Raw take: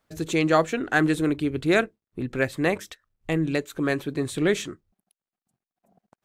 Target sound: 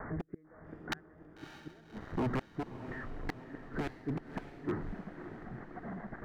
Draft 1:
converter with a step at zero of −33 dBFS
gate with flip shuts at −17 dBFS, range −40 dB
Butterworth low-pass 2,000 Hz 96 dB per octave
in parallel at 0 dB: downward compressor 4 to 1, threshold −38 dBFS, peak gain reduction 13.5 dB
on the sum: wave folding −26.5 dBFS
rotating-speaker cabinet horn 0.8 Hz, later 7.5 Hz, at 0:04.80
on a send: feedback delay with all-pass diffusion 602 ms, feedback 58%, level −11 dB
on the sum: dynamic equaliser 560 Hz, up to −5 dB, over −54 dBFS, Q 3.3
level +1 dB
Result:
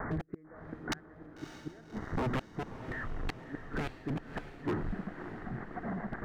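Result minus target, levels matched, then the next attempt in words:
downward compressor: peak gain reduction +13.5 dB
converter with a step at zero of −33 dBFS
gate with flip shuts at −17 dBFS, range −40 dB
Butterworth low-pass 2,000 Hz 96 dB per octave
wave folding −26.5 dBFS
rotating-speaker cabinet horn 0.8 Hz, later 7.5 Hz, at 0:04.80
on a send: feedback delay with all-pass diffusion 602 ms, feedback 58%, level −11 dB
on the sum: dynamic equaliser 560 Hz, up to −5 dB, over −54 dBFS, Q 3.3
level +1 dB

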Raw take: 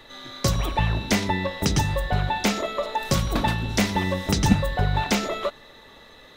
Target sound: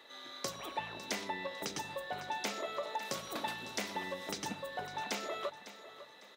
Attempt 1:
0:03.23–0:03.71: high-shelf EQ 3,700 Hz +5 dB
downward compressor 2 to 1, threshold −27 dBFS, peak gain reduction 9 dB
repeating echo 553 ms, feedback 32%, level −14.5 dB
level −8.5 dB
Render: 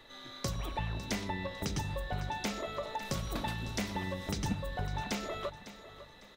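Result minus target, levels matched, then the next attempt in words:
250 Hz band +5.5 dB
0:03.23–0:03.71: high-shelf EQ 3,700 Hz +5 dB
downward compressor 2 to 1, threshold −27 dBFS, peak gain reduction 9 dB
high-pass filter 340 Hz 12 dB per octave
repeating echo 553 ms, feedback 32%, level −14.5 dB
level −8.5 dB

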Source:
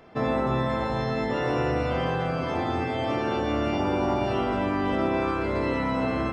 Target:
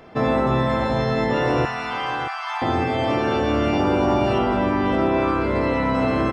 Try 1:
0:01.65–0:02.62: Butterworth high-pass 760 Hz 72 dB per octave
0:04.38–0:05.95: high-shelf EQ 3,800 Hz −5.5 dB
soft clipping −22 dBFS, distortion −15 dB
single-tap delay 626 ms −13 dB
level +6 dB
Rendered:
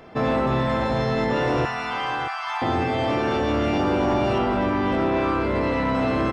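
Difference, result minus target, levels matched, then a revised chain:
soft clipping: distortion +13 dB
0:01.65–0:02.62: Butterworth high-pass 760 Hz 72 dB per octave
0:04.38–0:05.95: high-shelf EQ 3,800 Hz −5.5 dB
soft clipping −13.5 dBFS, distortion −28 dB
single-tap delay 626 ms −13 dB
level +6 dB

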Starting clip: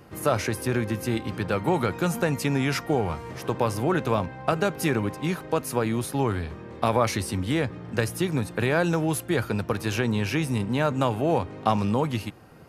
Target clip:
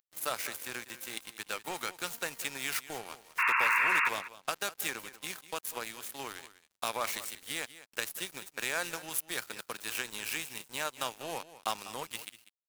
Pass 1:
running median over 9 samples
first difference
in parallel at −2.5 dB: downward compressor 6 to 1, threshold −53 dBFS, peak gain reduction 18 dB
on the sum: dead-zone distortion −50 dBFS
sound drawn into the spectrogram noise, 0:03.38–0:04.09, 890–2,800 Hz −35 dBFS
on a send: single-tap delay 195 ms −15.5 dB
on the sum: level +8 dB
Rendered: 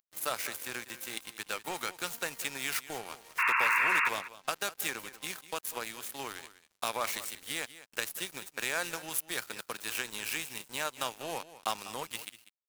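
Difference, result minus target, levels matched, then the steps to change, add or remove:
downward compressor: peak gain reduction −5.5 dB
change: downward compressor 6 to 1, threshold −59.5 dBFS, peak gain reduction 23.5 dB

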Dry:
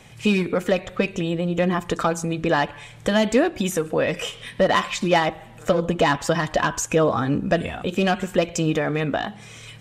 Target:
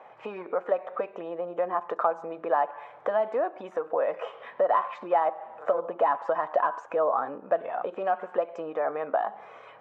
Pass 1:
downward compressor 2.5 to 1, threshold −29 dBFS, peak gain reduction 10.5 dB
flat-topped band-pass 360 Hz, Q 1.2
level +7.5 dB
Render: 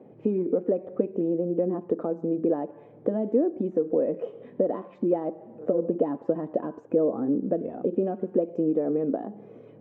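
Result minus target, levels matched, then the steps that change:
1,000 Hz band −14.5 dB
change: flat-topped band-pass 820 Hz, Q 1.2

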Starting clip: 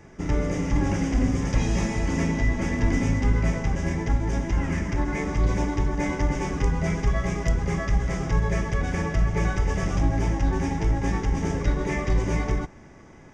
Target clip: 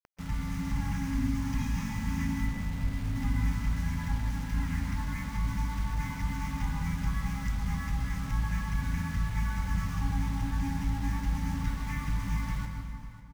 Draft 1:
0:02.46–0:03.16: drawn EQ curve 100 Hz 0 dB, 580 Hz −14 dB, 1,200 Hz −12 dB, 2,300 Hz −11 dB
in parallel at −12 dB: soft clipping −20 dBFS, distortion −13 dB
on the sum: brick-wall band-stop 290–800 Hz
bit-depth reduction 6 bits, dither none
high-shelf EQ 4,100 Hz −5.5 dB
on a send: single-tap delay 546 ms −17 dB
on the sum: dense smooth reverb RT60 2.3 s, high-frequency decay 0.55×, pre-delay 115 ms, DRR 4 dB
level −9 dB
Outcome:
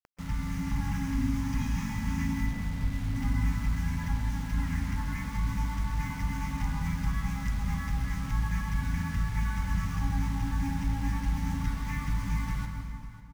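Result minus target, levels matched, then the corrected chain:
soft clipping: distortion −8 dB
0:02.46–0:03.16: drawn EQ curve 100 Hz 0 dB, 580 Hz −14 dB, 1,200 Hz −12 dB, 2,300 Hz −11 dB
in parallel at −12 dB: soft clipping −31.5 dBFS, distortion −5 dB
on the sum: brick-wall band-stop 290–800 Hz
bit-depth reduction 6 bits, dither none
high-shelf EQ 4,100 Hz −5.5 dB
on a send: single-tap delay 546 ms −17 dB
on the sum: dense smooth reverb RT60 2.3 s, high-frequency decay 0.55×, pre-delay 115 ms, DRR 4 dB
level −9 dB

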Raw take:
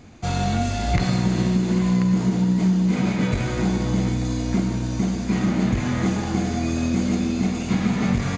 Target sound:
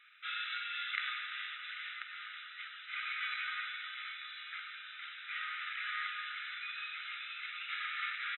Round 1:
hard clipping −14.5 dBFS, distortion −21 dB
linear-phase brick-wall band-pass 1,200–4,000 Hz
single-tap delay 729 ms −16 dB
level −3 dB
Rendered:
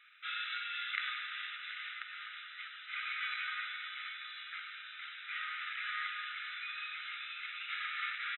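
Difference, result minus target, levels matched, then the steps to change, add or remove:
echo 284 ms late
change: single-tap delay 445 ms −16 dB

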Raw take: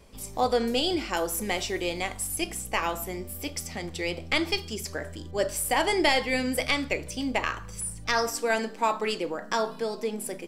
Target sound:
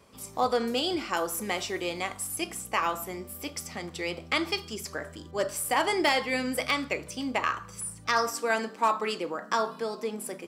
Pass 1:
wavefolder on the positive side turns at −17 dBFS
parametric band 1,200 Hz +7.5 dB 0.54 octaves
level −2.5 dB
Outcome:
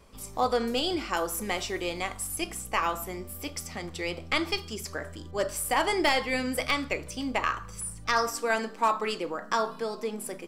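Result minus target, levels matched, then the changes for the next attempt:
125 Hz band +2.5 dB
add after wavefolder on the positive side: high-pass filter 100 Hz 12 dB per octave

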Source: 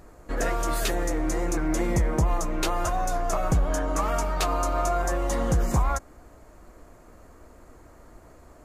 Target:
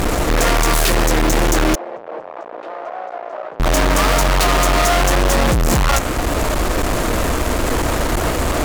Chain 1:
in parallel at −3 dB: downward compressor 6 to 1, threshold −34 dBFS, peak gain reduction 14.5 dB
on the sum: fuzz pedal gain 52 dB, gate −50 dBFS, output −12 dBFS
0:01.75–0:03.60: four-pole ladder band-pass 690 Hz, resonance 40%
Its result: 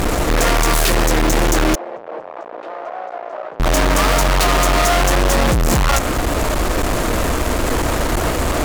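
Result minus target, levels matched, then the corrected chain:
downward compressor: peak gain reduction −6.5 dB
in parallel at −3 dB: downward compressor 6 to 1, threshold −42 dBFS, peak gain reduction 21 dB
on the sum: fuzz pedal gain 52 dB, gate −50 dBFS, output −12 dBFS
0:01.75–0:03.60: four-pole ladder band-pass 690 Hz, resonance 40%

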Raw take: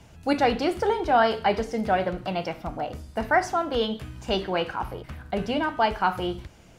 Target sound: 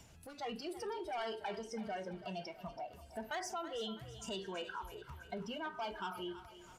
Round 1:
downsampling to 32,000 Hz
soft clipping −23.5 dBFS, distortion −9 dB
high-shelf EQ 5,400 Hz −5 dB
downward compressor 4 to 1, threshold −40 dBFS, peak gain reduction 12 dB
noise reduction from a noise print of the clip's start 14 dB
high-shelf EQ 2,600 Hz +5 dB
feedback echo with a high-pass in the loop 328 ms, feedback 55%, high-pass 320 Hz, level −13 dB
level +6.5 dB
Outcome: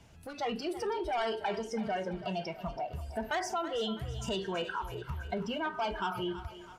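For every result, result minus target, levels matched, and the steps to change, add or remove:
downward compressor: peak gain reduction −8 dB; 8,000 Hz band −4.0 dB
change: downward compressor 4 to 1, threshold −50.5 dBFS, peak gain reduction 20 dB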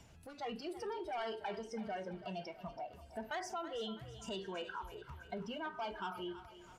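8,000 Hz band −4.0 dB
change: first high-shelf EQ 5,400 Hz +2.5 dB

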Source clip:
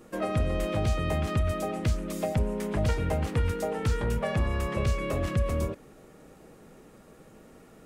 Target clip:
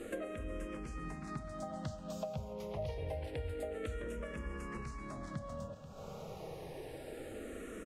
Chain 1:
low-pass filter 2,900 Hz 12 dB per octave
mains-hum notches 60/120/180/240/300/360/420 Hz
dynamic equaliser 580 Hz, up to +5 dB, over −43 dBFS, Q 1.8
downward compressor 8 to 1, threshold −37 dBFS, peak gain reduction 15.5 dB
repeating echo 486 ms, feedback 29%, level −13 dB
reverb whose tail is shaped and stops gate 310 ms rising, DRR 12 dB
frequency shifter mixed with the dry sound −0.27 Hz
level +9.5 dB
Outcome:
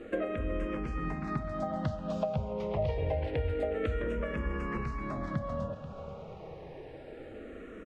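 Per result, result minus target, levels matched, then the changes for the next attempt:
downward compressor: peak gain reduction −9 dB; 4,000 Hz band −6.0 dB
change: downward compressor 8 to 1, threshold −47 dBFS, peak gain reduction 24.5 dB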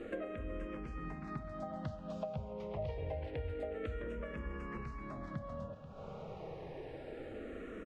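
4,000 Hz band −4.5 dB
change: low-pass filter 11,000 Hz 12 dB per octave

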